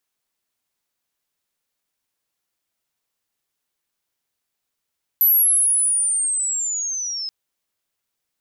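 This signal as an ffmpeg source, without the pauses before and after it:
ffmpeg -f lavfi -i "aevalsrc='pow(10,(-11.5-13.5*t/2.08)/20)*sin(2*PI*(12000*t-6900*t*t/(2*2.08)))':duration=2.08:sample_rate=44100" out.wav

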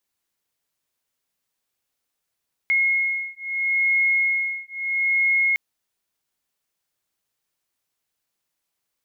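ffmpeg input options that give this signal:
ffmpeg -f lavfi -i "aevalsrc='0.0794*(sin(2*PI*2160*t)+sin(2*PI*2160.76*t))':duration=2.86:sample_rate=44100" out.wav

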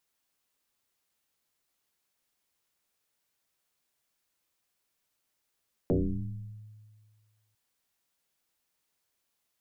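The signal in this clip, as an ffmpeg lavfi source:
ffmpeg -f lavfi -i "aevalsrc='0.0891*pow(10,-3*t/1.82)*sin(2*PI*107*t+5.1*pow(10,-3*t/1.38)*sin(2*PI*0.85*107*t))':duration=1.65:sample_rate=44100" out.wav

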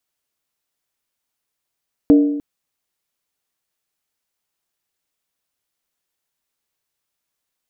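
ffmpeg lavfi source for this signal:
ffmpeg -f lavfi -i "aevalsrc='0.562*pow(10,-3*t/0.94)*sin(2*PI*290*t)+0.178*pow(10,-3*t/0.745)*sin(2*PI*462.3*t)+0.0562*pow(10,-3*t/0.643)*sin(2*PI*619.4*t)+0.0178*pow(10,-3*t/0.62)*sin(2*PI*665.8*t)+0.00562*pow(10,-3*t/0.577)*sin(2*PI*769.4*t)':duration=0.3:sample_rate=44100" out.wav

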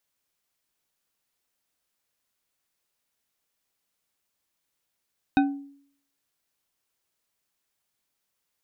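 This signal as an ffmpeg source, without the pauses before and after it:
ffmpeg -f lavfi -i "aevalsrc='0.178*pow(10,-3*t/0.61)*sin(2*PI*280*t)+0.106*pow(10,-3*t/0.3)*sin(2*PI*772*t)+0.0631*pow(10,-3*t/0.187)*sin(2*PI*1513.1*t)+0.0376*pow(10,-3*t/0.132)*sin(2*PI*2501.2*t)+0.0224*pow(10,-3*t/0.099)*sin(2*PI*3735.2*t)':duration=0.89:sample_rate=44100" out.wav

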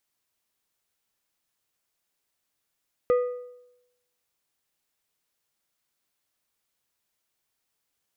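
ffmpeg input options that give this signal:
ffmpeg -f lavfi -i "aevalsrc='0.158*pow(10,-3*t/0.87)*sin(2*PI*493*t)+0.0398*pow(10,-3*t/0.661)*sin(2*PI*1232.5*t)+0.01*pow(10,-3*t/0.574)*sin(2*PI*1972*t)+0.00251*pow(10,-3*t/0.537)*sin(2*PI*2465*t)+0.000631*pow(10,-3*t/0.496)*sin(2*PI*3204.5*t)':duration=1.55:sample_rate=44100" out.wav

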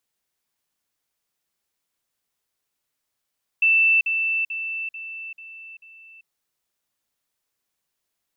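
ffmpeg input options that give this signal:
ffmpeg -f lavfi -i "aevalsrc='pow(10,(-14-6*floor(t/0.44))/20)*sin(2*PI*2660*t)*clip(min(mod(t,0.44),0.39-mod(t,0.44))/0.005,0,1)':duration=2.64:sample_rate=44100" out.wav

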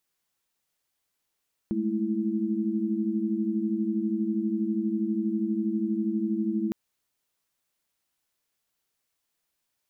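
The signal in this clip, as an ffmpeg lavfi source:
ffmpeg -f lavfi -i "aevalsrc='0.0355*(sin(2*PI*207.65*t)+sin(2*PI*220*t)+sin(2*PI*329.63*t))':duration=5.01:sample_rate=44100" out.wav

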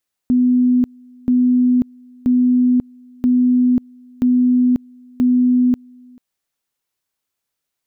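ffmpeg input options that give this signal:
ffmpeg -f lavfi -i "aevalsrc='pow(10,(-10.5-29.5*gte(mod(t,0.98),0.54))/20)*sin(2*PI*249*t)':duration=5.88:sample_rate=44100" out.wav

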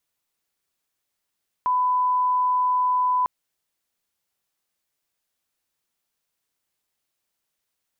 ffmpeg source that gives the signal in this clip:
ffmpeg -f lavfi -i "sine=frequency=1000:duration=1.6:sample_rate=44100,volume=0.06dB" out.wav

